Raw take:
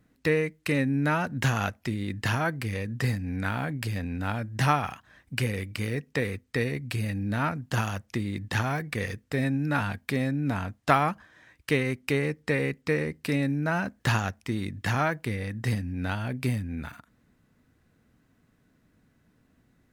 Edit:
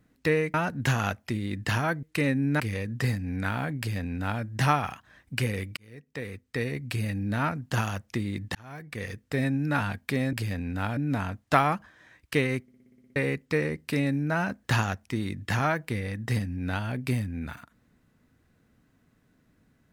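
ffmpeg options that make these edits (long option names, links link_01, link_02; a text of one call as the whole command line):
ffmpeg -i in.wav -filter_complex "[0:a]asplit=17[link_01][link_02][link_03][link_04][link_05][link_06][link_07][link_08][link_09][link_10][link_11][link_12][link_13][link_14][link_15][link_16][link_17];[link_01]atrim=end=0.542[link_18];[link_02]atrim=start=1.108:end=2.602[link_19];[link_03]atrim=start=0.538:end=1.112[link_20];[link_04]atrim=start=2.598:end=5.77,asetpts=PTS-STARTPTS,afade=type=out:start_time=3.168:duration=0.004:curve=hsin[link_21];[link_05]atrim=start=5.77:end=8.55,asetpts=PTS-STARTPTS,afade=type=in:duration=1.12,afade=type=out:start_time=2.776:duration=0.004:curve=hsin[link_22];[link_06]atrim=start=8.55:end=10.332,asetpts=PTS-STARTPTS,afade=type=in:duration=0.79[link_23];[link_07]atrim=start=3.778:end=4.422[link_24];[link_08]atrim=start=10.328:end=12.042[link_25];[link_09]atrim=start=11.978:end=12.042[link_26];[link_10]atrim=start=11.978:end=12.042[link_27];[link_11]atrim=start=11.978:end=12.042[link_28];[link_12]atrim=start=11.978:end=12.042[link_29];[link_13]atrim=start=11.978:end=12.042[link_30];[link_14]atrim=start=11.978:end=12.042[link_31];[link_15]atrim=start=11.978:end=12.042[link_32];[link_16]atrim=start=11.978:end=12.042[link_33];[link_17]atrim=start=12.518[link_34];[link_18][link_19]acrossfade=duration=0.004:curve1=hsin:curve2=hsin[link_35];[link_35][link_20]acrossfade=duration=0.004:curve1=hsin:curve2=hsin[link_36];[link_21][link_22][link_23]concat=n=3:v=0:a=1[link_37];[link_36][link_37]acrossfade=duration=0.004:curve1=hsin:curve2=hsin[link_38];[link_38][link_24]acrossfade=duration=0.004:curve1=hsin:curve2=hsin[link_39];[link_39][link_25]acrossfade=duration=0.004:curve1=hsin:curve2=hsin[link_40];[link_40][link_26]acrossfade=duration=0.004:curve1=hsin:curve2=hsin[link_41];[link_41][link_27]acrossfade=duration=0.004:curve1=hsin:curve2=hsin[link_42];[link_42][link_28]acrossfade=duration=0.004:curve1=hsin:curve2=hsin[link_43];[link_43][link_29]acrossfade=duration=0.004:curve1=hsin:curve2=hsin[link_44];[link_44][link_30]acrossfade=duration=0.004:curve1=hsin:curve2=hsin[link_45];[link_45][link_31]acrossfade=duration=0.004:curve1=hsin:curve2=hsin[link_46];[link_46][link_32]acrossfade=duration=0.004:curve1=hsin:curve2=hsin[link_47];[link_47][link_33]acrossfade=duration=0.004:curve1=hsin:curve2=hsin[link_48];[link_48][link_34]acrossfade=duration=0.004:curve1=hsin:curve2=hsin" out.wav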